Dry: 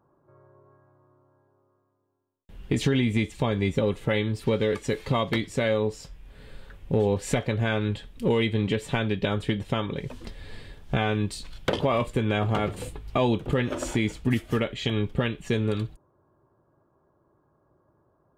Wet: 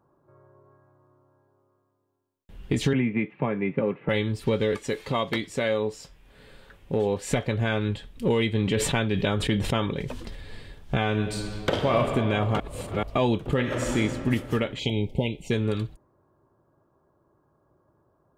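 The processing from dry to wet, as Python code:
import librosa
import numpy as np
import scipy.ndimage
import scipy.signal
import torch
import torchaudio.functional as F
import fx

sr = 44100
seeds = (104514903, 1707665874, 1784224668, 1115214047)

y = fx.cheby1_bandpass(x, sr, low_hz=130.0, high_hz=2500.0, order=4, at=(2.93, 4.09))
y = fx.low_shelf(y, sr, hz=130.0, db=-10.5, at=(4.76, 7.3))
y = fx.sustainer(y, sr, db_per_s=38.0, at=(8.51, 10.41))
y = fx.reverb_throw(y, sr, start_s=11.07, length_s=0.93, rt60_s=2.8, drr_db=2.5)
y = fx.reverb_throw(y, sr, start_s=13.55, length_s=0.41, rt60_s=2.9, drr_db=1.0)
y = fx.brickwall_bandstop(y, sr, low_hz=980.0, high_hz=2000.0, at=(14.79, 15.51))
y = fx.edit(y, sr, fx.reverse_span(start_s=12.6, length_s=0.43), tone=tone)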